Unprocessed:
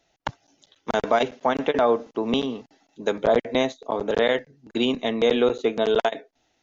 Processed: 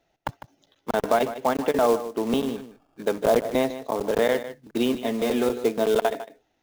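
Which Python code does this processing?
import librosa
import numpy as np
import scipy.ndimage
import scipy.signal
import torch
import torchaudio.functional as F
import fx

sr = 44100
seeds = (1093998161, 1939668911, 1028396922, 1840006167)

p1 = fx.sample_hold(x, sr, seeds[0], rate_hz=2000.0, jitter_pct=0, at=(2.56, 3.03))
p2 = fx.high_shelf(p1, sr, hz=3000.0, db=-11.5)
p3 = fx.quant_float(p2, sr, bits=2)
p4 = fx.notch_comb(p3, sr, f0_hz=160.0, at=(4.88, 5.65))
y = p4 + fx.echo_single(p4, sr, ms=152, db=-13.0, dry=0)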